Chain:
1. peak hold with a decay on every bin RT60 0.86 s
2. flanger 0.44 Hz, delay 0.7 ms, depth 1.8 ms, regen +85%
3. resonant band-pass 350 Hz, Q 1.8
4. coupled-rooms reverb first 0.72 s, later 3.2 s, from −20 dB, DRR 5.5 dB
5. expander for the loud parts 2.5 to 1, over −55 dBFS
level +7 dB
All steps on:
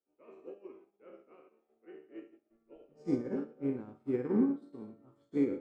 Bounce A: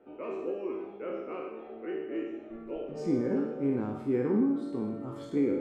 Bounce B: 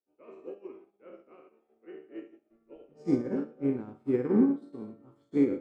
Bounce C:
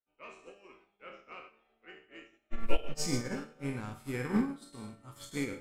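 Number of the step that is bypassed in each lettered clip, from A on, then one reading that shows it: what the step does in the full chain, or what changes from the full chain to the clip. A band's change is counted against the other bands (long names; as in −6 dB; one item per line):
5, 1 kHz band +4.0 dB
2, change in integrated loudness +5.0 LU
3, 2 kHz band +12.5 dB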